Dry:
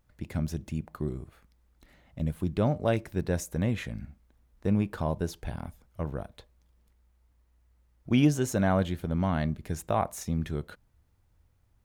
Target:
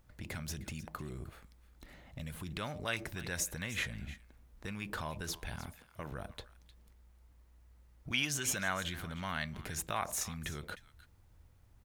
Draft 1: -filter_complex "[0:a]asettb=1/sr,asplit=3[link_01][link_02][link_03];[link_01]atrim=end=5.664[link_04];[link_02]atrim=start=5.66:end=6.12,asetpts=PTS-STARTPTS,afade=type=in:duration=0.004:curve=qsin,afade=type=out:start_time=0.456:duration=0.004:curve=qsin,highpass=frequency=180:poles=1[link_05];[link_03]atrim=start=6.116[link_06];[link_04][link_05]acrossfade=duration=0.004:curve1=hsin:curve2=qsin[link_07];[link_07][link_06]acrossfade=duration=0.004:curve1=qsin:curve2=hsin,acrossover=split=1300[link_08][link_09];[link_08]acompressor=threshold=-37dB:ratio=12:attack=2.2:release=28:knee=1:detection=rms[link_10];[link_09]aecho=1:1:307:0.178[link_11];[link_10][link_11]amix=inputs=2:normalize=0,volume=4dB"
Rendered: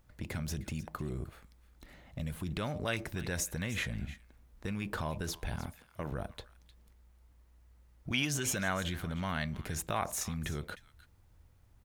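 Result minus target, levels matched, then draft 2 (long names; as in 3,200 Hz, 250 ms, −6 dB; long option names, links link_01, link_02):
downward compressor: peak gain reduction −6 dB
-filter_complex "[0:a]asettb=1/sr,asplit=3[link_01][link_02][link_03];[link_01]atrim=end=5.664[link_04];[link_02]atrim=start=5.66:end=6.12,asetpts=PTS-STARTPTS,afade=type=in:duration=0.004:curve=qsin,afade=type=out:start_time=0.456:duration=0.004:curve=qsin,highpass=frequency=180:poles=1[link_05];[link_03]atrim=start=6.116[link_06];[link_04][link_05]acrossfade=duration=0.004:curve1=hsin:curve2=qsin[link_07];[link_07][link_06]acrossfade=duration=0.004:curve1=qsin:curve2=hsin,acrossover=split=1300[link_08][link_09];[link_08]acompressor=threshold=-43.5dB:ratio=12:attack=2.2:release=28:knee=1:detection=rms[link_10];[link_09]aecho=1:1:307:0.178[link_11];[link_10][link_11]amix=inputs=2:normalize=0,volume=4dB"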